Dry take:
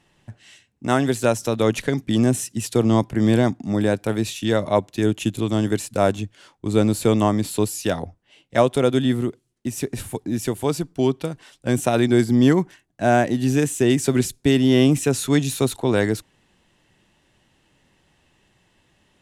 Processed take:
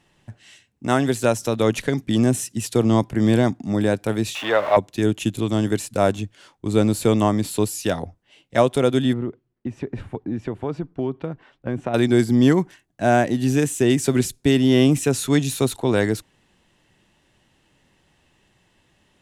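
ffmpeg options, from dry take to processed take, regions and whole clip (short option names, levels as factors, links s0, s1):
-filter_complex "[0:a]asettb=1/sr,asplit=3[s0][s1][s2];[s0]atrim=end=4.354[s3];[s1]atrim=start=4.35:end=4.77,asetpts=PTS-STARTPTS,afade=t=in:d=0.004:c=qsin,afade=t=out:st=0.416:d=0.004:c=qsin,aeval=exprs='val(0)+0.5*0.0422*sgn(val(0))':c=same,acrossover=split=500 3000:gain=0.0708 1 0.112[s4][s5][s6];[s4][s5][s6]amix=inputs=3:normalize=0,acontrast=56[s7];[s2]atrim=start=4.766[s8];[s3][s7]acrossfade=d=0.004:c1=hsin:c2=qsin[s9];[s9][s8]acrossfade=d=0.004:c1=qsin:c2=hsin,asettb=1/sr,asplit=3[s10][s11][s12];[s10]atrim=end=9.134[s13];[s11]atrim=start=9.13:end=11.94,asetpts=PTS-STARTPTS,afade=t=in:d=0.004:c=qsin,afade=t=out:st=2.806:d=0.004:c=qsin,acompressor=threshold=0.0891:ratio=3:attack=3.2:release=140:knee=1:detection=peak,lowpass=1800[s14];[s12]atrim=start=11.936[s15];[s13][s14]acrossfade=d=0.004:c1=hsin:c2=qsin[s16];[s16][s15]acrossfade=d=0.004:c1=qsin:c2=hsin"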